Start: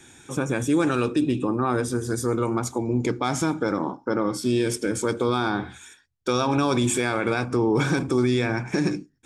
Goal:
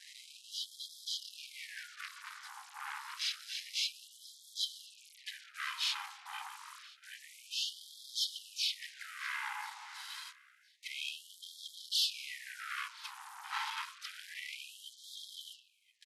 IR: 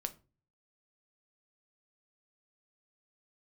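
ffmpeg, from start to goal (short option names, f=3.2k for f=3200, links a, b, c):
-filter_complex "[0:a]asplit=4[a][b][c][d];[b]asetrate=29433,aresample=44100,atempo=1.49831,volume=-11dB[e];[c]asetrate=35002,aresample=44100,atempo=1.25992,volume=-1dB[f];[d]asetrate=52444,aresample=44100,atempo=0.840896,volume=-11dB[g];[a][e][f][g]amix=inputs=4:normalize=0,asubboost=boost=3.5:cutoff=68,acrusher=bits=6:mix=0:aa=0.5,asoftclip=type=tanh:threshold=-23dB,equalizer=f=1.2k:t=o:w=0.56:g=-14.5,aecho=1:1:590|1180:0.0708|0.0163,asetrate=25442,aresample=44100,afftfilt=real='re*gte(b*sr/1024,730*pow(3200/730,0.5+0.5*sin(2*PI*0.28*pts/sr)))':imag='im*gte(b*sr/1024,730*pow(3200/730,0.5+0.5*sin(2*PI*0.28*pts/sr)))':win_size=1024:overlap=0.75,volume=-2dB"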